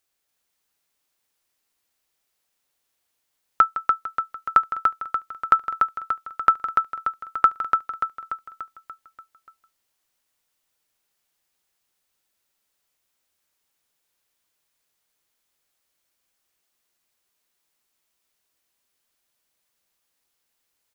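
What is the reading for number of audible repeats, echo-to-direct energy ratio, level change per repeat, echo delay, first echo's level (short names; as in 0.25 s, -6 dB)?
6, -2.5 dB, -5.0 dB, 0.291 s, -4.0 dB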